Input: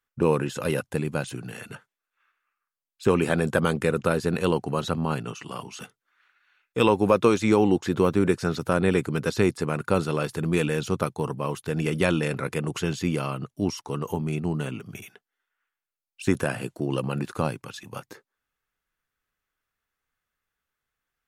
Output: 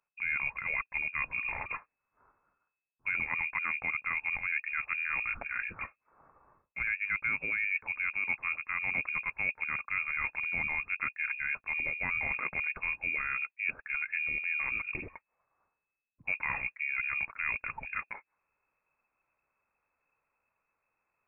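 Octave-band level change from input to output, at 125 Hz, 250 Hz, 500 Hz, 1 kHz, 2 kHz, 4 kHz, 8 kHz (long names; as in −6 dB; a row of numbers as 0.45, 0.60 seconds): −25.5 dB, −29.0 dB, −29.5 dB, −11.0 dB, +4.5 dB, below −20 dB, below −40 dB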